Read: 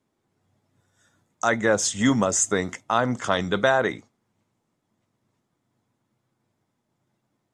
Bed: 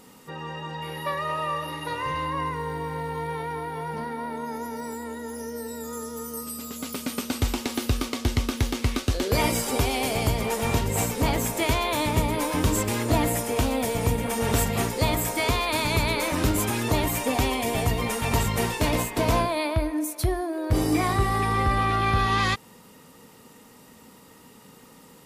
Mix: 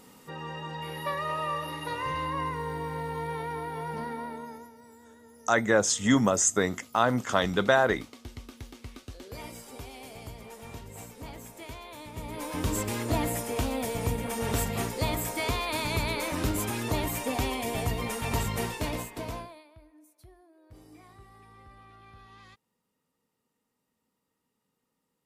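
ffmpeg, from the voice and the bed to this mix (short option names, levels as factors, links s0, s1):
-filter_complex "[0:a]adelay=4050,volume=0.794[s0];[1:a]volume=3.35,afade=t=out:st=4.11:d=0.62:silence=0.158489,afade=t=in:st=12.13:d=0.63:silence=0.211349,afade=t=out:st=18.55:d=1.09:silence=0.0595662[s1];[s0][s1]amix=inputs=2:normalize=0"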